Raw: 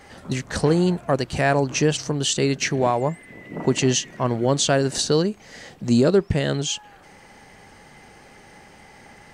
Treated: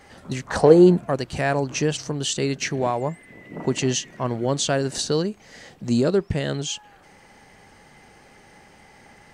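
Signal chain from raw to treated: 0.46–1.04 s: peaking EQ 1.2 kHz -> 180 Hz +14.5 dB 1.2 oct; trim -3 dB

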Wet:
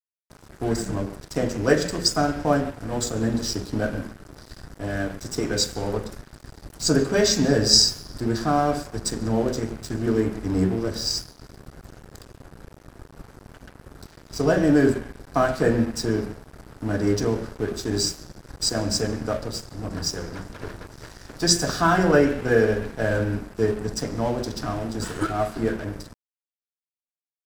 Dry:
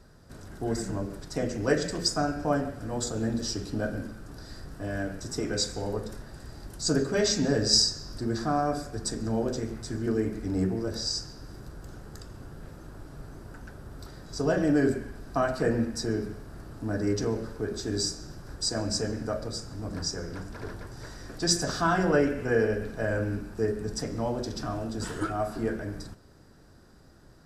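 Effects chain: crossover distortion -43 dBFS; trim +6.5 dB

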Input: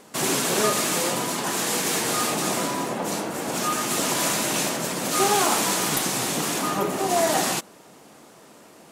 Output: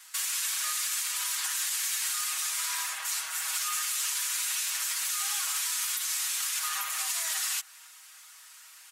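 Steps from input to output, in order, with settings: high-pass 1.3 kHz 24 dB/octave; tilt EQ +2 dB/octave; comb 6.3 ms, depth 98%; compression 4:1, threshold -22 dBFS, peak gain reduction 9.5 dB; peak limiter -17 dBFS, peak gain reduction 7 dB; speakerphone echo 270 ms, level -24 dB; trim -4 dB

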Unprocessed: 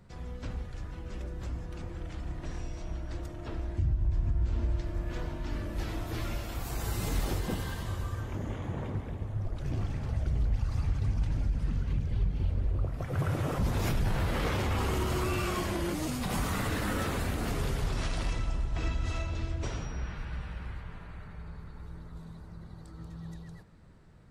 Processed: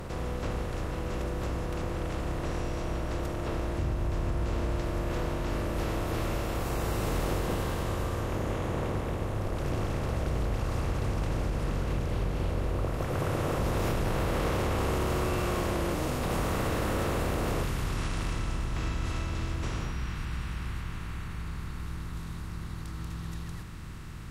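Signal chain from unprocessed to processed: spectral levelling over time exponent 0.4; peaking EQ 550 Hz +7 dB 1.3 oct, from 17.63 s -3.5 dB, from 19.91 s -11.5 dB; trim -6 dB

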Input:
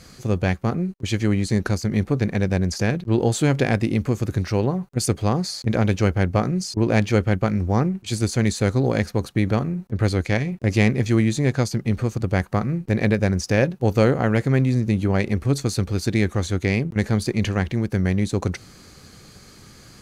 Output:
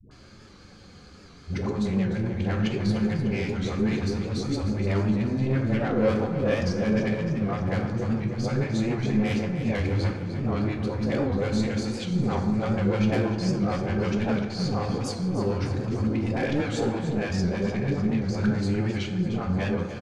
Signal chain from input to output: reverse the whole clip; low-pass 4.6 kHz 12 dB/octave; band-stop 1.9 kHz, Q 14; saturation -15 dBFS, distortion -14 dB; phase dispersion highs, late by 112 ms, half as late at 470 Hz; flange 0.19 Hz, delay 2.8 ms, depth 3.4 ms, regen -67%; feedback delay 300 ms, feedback 60%, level -11 dB; plate-style reverb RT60 1.1 s, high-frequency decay 0.55×, DRR 3 dB; warped record 78 rpm, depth 100 cents

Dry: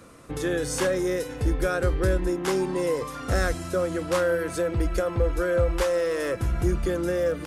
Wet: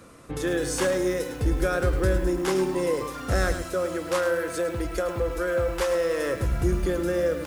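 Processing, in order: 3.62–5.95 s: bass shelf 230 Hz -8 dB; bit-crushed delay 106 ms, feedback 35%, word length 7-bit, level -9 dB

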